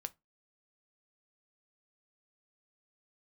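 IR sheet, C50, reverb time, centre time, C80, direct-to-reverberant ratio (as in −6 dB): 25.0 dB, 0.20 s, 2 ms, 35.5 dB, 10.5 dB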